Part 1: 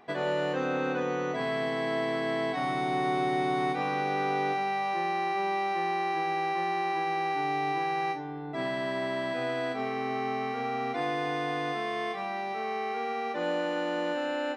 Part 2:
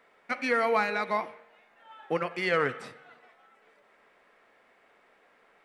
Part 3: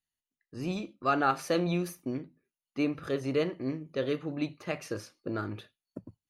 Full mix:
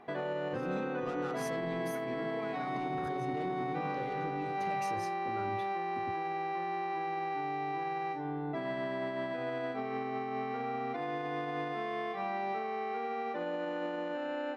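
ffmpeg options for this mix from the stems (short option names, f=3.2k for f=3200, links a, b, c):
-filter_complex "[0:a]lowpass=f=1.9k:p=1,alimiter=level_in=5dB:limit=-24dB:level=0:latency=1:release=177,volume=-5dB,volume=1.5dB[a];[1:a]acrossover=split=320[b][c];[c]acompressor=threshold=-32dB:ratio=6[d];[b][d]amix=inputs=2:normalize=0,adelay=1650,volume=-13dB[e];[2:a]asoftclip=type=tanh:threshold=-27dB,lowshelf=f=470:g=7.5,alimiter=level_in=11.5dB:limit=-24dB:level=0:latency=1,volume=-11.5dB,volume=-1.5dB,asplit=2[f][g];[g]apad=whole_len=321709[h];[e][h]sidechaincompress=threshold=-51dB:ratio=8:attack=16:release=152[i];[a][i][f]amix=inputs=3:normalize=0"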